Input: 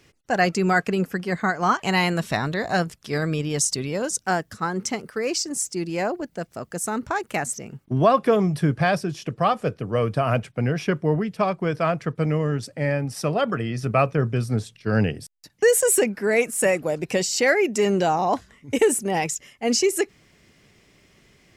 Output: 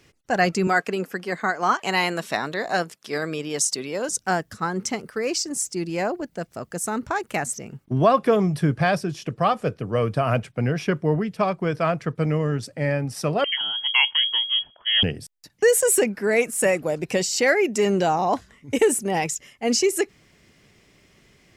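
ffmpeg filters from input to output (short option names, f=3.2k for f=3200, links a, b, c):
-filter_complex "[0:a]asettb=1/sr,asplit=3[a][b][c];[a]atrim=end=0.674[d];[b]atrim=start=0.67:end=4.09,asetpts=PTS-STARTPTS,afade=t=in:d=0.004:c=qsin,afade=t=out:st=3.416:d=0.004:c=qsin,highpass=280[e];[c]atrim=start=4.086[f];[d][e]acrossfade=d=0.004:c1=hsin:c2=qsin[g];[g][f]acrossfade=d=0.004:c1=qsin:c2=hsin,asettb=1/sr,asplit=3[h][i][j];[h]atrim=end=13.444[k];[i]atrim=start=13.44:end=15.03,asetpts=PTS-STARTPTS,afade=t=in:d=0.004:c=qsin,afade=t=out:st=1.586:d=0.004:c=qsin,lowpass=f=2.9k:t=q:w=0.5098,lowpass=f=2.9k:t=q:w=0.6013,lowpass=f=2.9k:t=q:w=0.9,lowpass=f=2.9k:t=q:w=2.563,afreqshift=-3400[l];[j]atrim=start=15.026[m];[k][l]acrossfade=d=0.004:c1=hsin:c2=qsin[n];[n][m]acrossfade=d=0.004:c1=qsin:c2=hsin"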